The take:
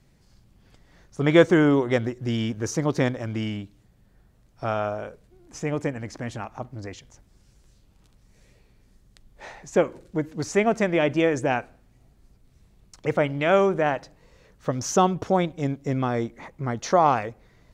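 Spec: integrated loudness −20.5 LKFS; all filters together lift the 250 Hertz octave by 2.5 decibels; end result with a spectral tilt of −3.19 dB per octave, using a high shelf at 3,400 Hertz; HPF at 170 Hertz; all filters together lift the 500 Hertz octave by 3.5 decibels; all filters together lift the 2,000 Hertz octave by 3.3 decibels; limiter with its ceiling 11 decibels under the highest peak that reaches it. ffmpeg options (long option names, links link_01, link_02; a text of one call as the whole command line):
ffmpeg -i in.wav -af "highpass=170,equalizer=frequency=250:width_type=o:gain=3,equalizer=frequency=500:width_type=o:gain=3.5,equalizer=frequency=2000:width_type=o:gain=6,highshelf=frequency=3400:gain=-7.5,volume=4.5dB,alimiter=limit=-6.5dB:level=0:latency=1" out.wav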